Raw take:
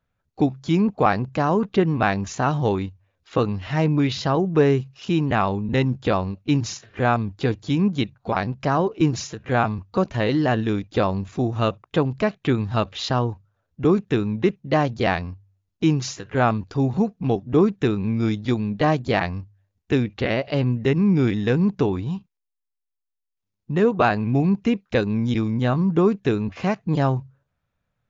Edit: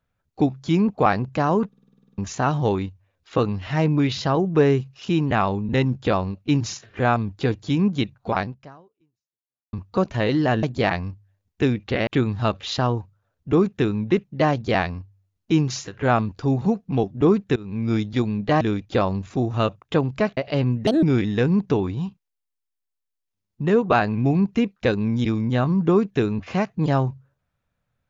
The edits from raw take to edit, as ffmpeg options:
-filter_complex "[0:a]asplit=19[s0][s1][s2][s3][s4][s5][s6][s7][s8][s9][s10][s11][s12][s13][s14][s15][s16][s17][s18];[s0]atrim=end=1.732[s19];[s1]atrim=start=1.678:end=1.732[s20];[s2]atrim=start=1.678:end=1.732[s21];[s3]atrim=start=1.678:end=1.732[s22];[s4]atrim=start=1.678:end=1.732[s23];[s5]atrim=start=1.678:end=1.732[s24];[s6]atrim=start=1.678:end=1.732[s25];[s7]atrim=start=1.678:end=1.732[s26];[s8]atrim=start=1.678:end=1.732[s27];[s9]atrim=start=1.678:end=1.732[s28];[s10]atrim=start=2.178:end=9.73,asetpts=PTS-STARTPTS,afade=t=out:st=6.232:d=1.32:c=exp[s29];[s11]atrim=start=9.73:end=10.632,asetpts=PTS-STARTPTS,afade=t=in:d=0.004:c=hsin[s30];[s12]atrim=start=18.928:end=20.372[s31];[s13]atrim=start=12.388:end=17.88,asetpts=PTS-STARTPTS,afade=t=out:st=5.488:d=0.004:c=hsin:silence=0.0794328[s32];[s14]atrim=start=17.88:end=18.932,asetpts=PTS-STARTPTS,afade=t=in:d=0.34:silence=0.0794328[s33];[s15]atrim=start=10.628:end=12.392[s34];[s16]atrim=start=20.368:end=20.874[s35];[s17]atrim=start=20.87:end=21.12,asetpts=PTS-STARTPTS,asetrate=70119,aresample=44100[s36];[s18]atrim=start=21.116[s37];[s19][s20]acrossfade=d=0.004:c1=hsin:c2=hsin[s38];[s38][s21]acrossfade=d=0.004:c1=hsin:c2=hsin[s39];[s39][s22]acrossfade=d=0.004:c1=hsin:c2=hsin[s40];[s40][s23]acrossfade=d=0.004:c1=hsin:c2=hsin[s41];[s41][s24]acrossfade=d=0.004:c1=hsin:c2=hsin[s42];[s42][s25]acrossfade=d=0.004:c1=hsin:c2=hsin[s43];[s43][s26]acrossfade=d=0.004:c1=hsin:c2=hsin[s44];[s44][s27]acrossfade=d=0.004:c1=hsin:c2=hsin[s45];[s45][s28]acrossfade=d=0.004:c1=hsin:c2=hsin[s46];[s29][s30]concat=n=2:v=0:a=1[s47];[s46][s47]acrossfade=d=0.004:c1=hsin:c2=hsin[s48];[s48][s31]acrossfade=d=0.004:c1=hsin:c2=hsin[s49];[s32][s33]concat=n=2:v=0:a=1[s50];[s49][s50]acrossfade=d=0.004:c1=hsin:c2=hsin[s51];[s51][s34]acrossfade=d=0.004:c1=hsin:c2=hsin[s52];[s52][s35]acrossfade=d=0.004:c1=hsin:c2=hsin[s53];[s53][s36]acrossfade=d=0.004:c1=hsin:c2=hsin[s54];[s54][s37]acrossfade=d=0.004:c1=hsin:c2=hsin"

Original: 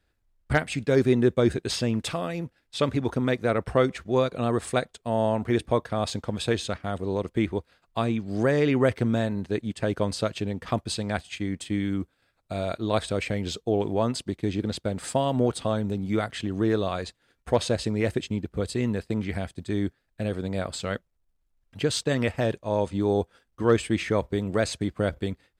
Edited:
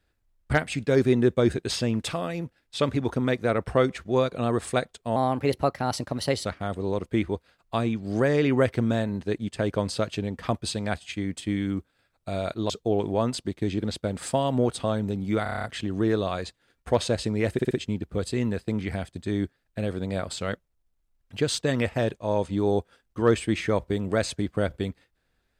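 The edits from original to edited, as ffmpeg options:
-filter_complex "[0:a]asplit=14[s0][s1][s2][s3][s4][s5][s6][s7][s8][s9][s10][s11][s12][s13];[s0]atrim=end=5.164[s14];[s1]atrim=start=5.16:end=6.69,asetpts=PTS-STARTPTS,asetrate=52038,aresample=44100[s15];[s2]atrim=start=6.686:end=12.932[s16];[s3]atrim=start=13.508:end=16.272[s17];[s4]atrim=start=16.238:end=16.272[s18];[s5]atrim=start=16.238:end=16.272[s19];[s6]atrim=start=16.238:end=16.272[s20];[s7]atrim=start=16.238:end=16.272[s21];[s8]atrim=start=16.238:end=16.272[s22];[s9]atrim=start=16.238:end=16.272[s23];[s10]atrim=start=16.238:end=18.192[s24];[s11]atrim=start=18.128:end=18.192[s25];[s12]atrim=start=18.128:end=18.192[s26];[s13]atrim=start=18.128[s27];[s14][s15]acrossfade=d=0.004:c1=hsin:c2=hsin[s28];[s28][s16]acrossfade=d=0.004:c1=hsin:c2=hsin[s29];[s29][s17]acrossfade=d=0.004:c1=hsin:c2=hsin[s30];[s30][s18]acrossfade=d=0.004:c1=hsin:c2=hsin[s31];[s31][s19]acrossfade=d=0.004:c1=hsin:c2=hsin[s32];[s32][s20]acrossfade=d=0.004:c1=hsin:c2=hsin[s33];[s33][s21]acrossfade=d=0.004:c1=hsin:c2=hsin[s34];[s34][s22]acrossfade=d=0.004:c1=hsin:c2=hsin[s35];[s35][s23]acrossfade=d=0.004:c1=hsin:c2=hsin[s36];[s36][s24]acrossfade=d=0.004:c1=hsin:c2=hsin[s37];[s37][s25]acrossfade=d=0.004:c1=hsin:c2=hsin[s38];[s38][s26]acrossfade=d=0.004:c1=hsin:c2=hsin[s39];[s39][s27]acrossfade=d=0.004:c1=hsin:c2=hsin"

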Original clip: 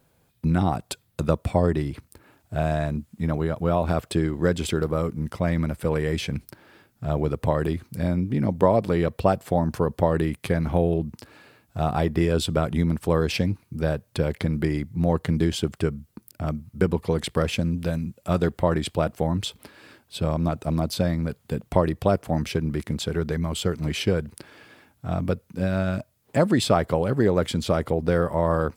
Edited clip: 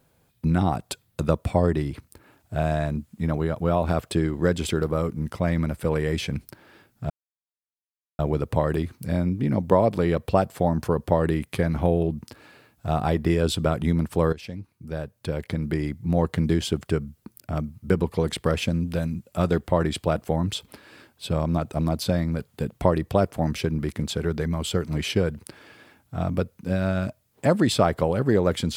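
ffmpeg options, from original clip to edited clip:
-filter_complex "[0:a]asplit=3[s0][s1][s2];[s0]atrim=end=7.1,asetpts=PTS-STARTPTS,afade=t=out:st=7.096:d=0.004:c=hsin,apad=pad_dur=1.09[s3];[s1]atrim=start=7.1:end=13.24,asetpts=PTS-STARTPTS,afade=t=in:d=0.004:c=hsin,afade=t=out:st=6.136:d=0.004:c=hsin:silence=0.158489[s4];[s2]atrim=start=13.24,asetpts=PTS-STARTPTS,afade=t=in:d=1.84:silence=0.158489[s5];[s3][s4][s5]concat=n=3:v=0:a=1"

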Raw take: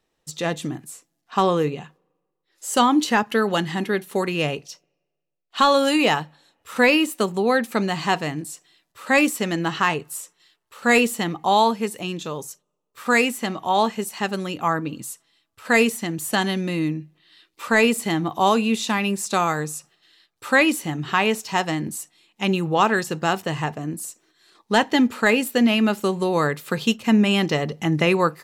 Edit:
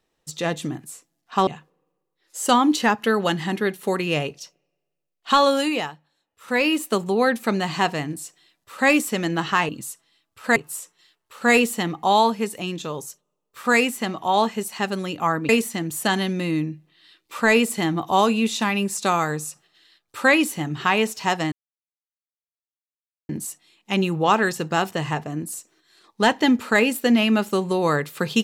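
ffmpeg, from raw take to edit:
-filter_complex "[0:a]asplit=8[s0][s1][s2][s3][s4][s5][s6][s7];[s0]atrim=end=1.472[s8];[s1]atrim=start=1.748:end=6.22,asetpts=PTS-STARTPTS,afade=t=out:st=3.992:d=0.48:silence=0.199526[s9];[s2]atrim=start=6.22:end=6.63,asetpts=PTS-STARTPTS,volume=0.2[s10];[s3]atrim=start=6.63:end=9.972,asetpts=PTS-STARTPTS,afade=t=in:d=0.48:silence=0.199526[s11];[s4]atrim=start=14.898:end=15.772[s12];[s5]atrim=start=9.968:end=14.902[s13];[s6]atrim=start=15.768:end=21.8,asetpts=PTS-STARTPTS,afade=t=out:st=6.028:d=0.004:c=hsin,apad=pad_dur=1.77[s14];[s7]atrim=start=21.8,asetpts=PTS-STARTPTS,afade=t=in:d=0.004:c=hsin[s15];[s9][s10][s11]concat=n=3:v=0:a=1[s16];[s8][s16]acrossfade=d=0.004:c1=hsin:c2=hsin[s17];[s17][s12]acrossfade=d=0.004:c1=hsin:c2=hsin[s18];[s18][s13]acrossfade=d=0.004:c1=hsin:c2=hsin[s19];[s14][s15]concat=n=2:v=0:a=1[s20];[s19][s20]acrossfade=d=0.004:c1=hsin:c2=hsin"

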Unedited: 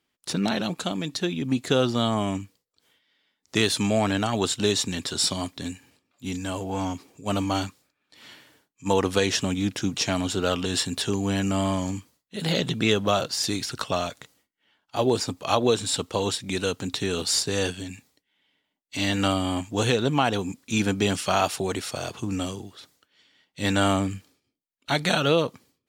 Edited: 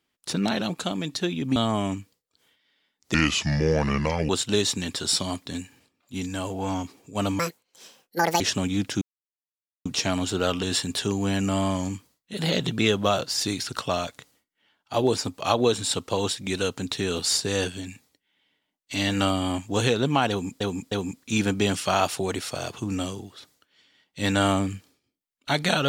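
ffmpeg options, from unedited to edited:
-filter_complex "[0:a]asplit=9[s0][s1][s2][s3][s4][s5][s6][s7][s8];[s0]atrim=end=1.562[s9];[s1]atrim=start=1.988:end=3.574[s10];[s2]atrim=start=3.57:end=4.4,asetpts=PTS-STARTPTS,asetrate=31752,aresample=44100[s11];[s3]atrim=start=4.396:end=7.504[s12];[s4]atrim=start=7.5:end=9.27,asetpts=PTS-STARTPTS,asetrate=77175,aresample=44100[s13];[s5]atrim=start=9.266:end=9.88,asetpts=PTS-STARTPTS,afade=t=out:st=0.61:d=0.004:c=hsin,apad=pad_dur=0.84[s14];[s6]atrim=start=9.88:end=20.632,asetpts=PTS-STARTPTS,afade=t=in:d=0.004:c=hsin[s15];[s7]atrim=start=20.318:end=20.632[s16];[s8]atrim=start=20.318[s17];[s9][s10]acrossfade=d=0.004:c1=hsin:c2=hsin[s18];[s18][s11]acrossfade=d=0.004:c1=hsin:c2=hsin[s19];[s19][s12]acrossfade=d=0.004:c1=hsin:c2=hsin[s20];[s20][s13]acrossfade=d=0.004:c1=hsin:c2=hsin[s21];[s14][s15]concat=n=2:v=0:a=1[s22];[s21][s22]acrossfade=d=0.004:c1=hsin:c2=hsin[s23];[s23][s16]acrossfade=d=0.004:c1=hsin:c2=hsin[s24];[s24][s17]acrossfade=d=0.004:c1=hsin:c2=hsin"

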